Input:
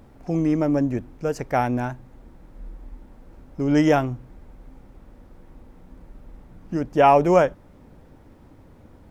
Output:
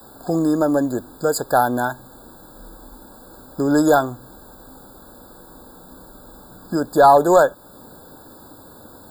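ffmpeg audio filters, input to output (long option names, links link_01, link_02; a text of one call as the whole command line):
ffmpeg -i in.wav -filter_complex "[0:a]aemphasis=mode=production:type=riaa,asplit=2[link_01][link_02];[link_02]acompressor=threshold=-32dB:ratio=4,volume=-1dB[link_03];[link_01][link_03]amix=inputs=2:normalize=0,adynamicequalizer=threshold=0.0178:dfrequency=150:dqfactor=0.75:tfrequency=150:tqfactor=0.75:attack=5:release=100:ratio=0.375:range=2:mode=cutabove:tftype=bell,acontrast=89,afftfilt=real='re*eq(mod(floor(b*sr/1024/1700),2),0)':imag='im*eq(mod(floor(b*sr/1024/1700),2),0)':win_size=1024:overlap=0.75,volume=-1dB" out.wav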